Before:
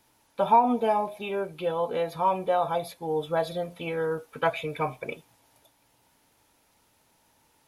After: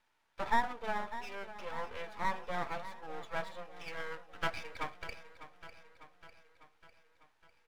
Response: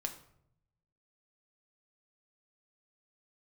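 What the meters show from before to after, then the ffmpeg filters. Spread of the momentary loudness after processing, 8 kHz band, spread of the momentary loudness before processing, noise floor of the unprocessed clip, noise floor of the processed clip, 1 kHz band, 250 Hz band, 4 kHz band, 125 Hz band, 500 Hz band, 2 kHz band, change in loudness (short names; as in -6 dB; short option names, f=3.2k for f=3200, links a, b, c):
22 LU, -6.0 dB, 11 LU, -66 dBFS, -74 dBFS, -11.5 dB, -15.5 dB, -6.0 dB, -13.0 dB, -16.5 dB, -2.5 dB, -12.0 dB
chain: -af "bandpass=f=1.6k:t=q:w=1.4:csg=0,aeval=exprs='max(val(0),0)':c=same,aecho=1:1:600|1200|1800|2400|3000|3600:0.211|0.123|0.0711|0.0412|0.0239|0.0139"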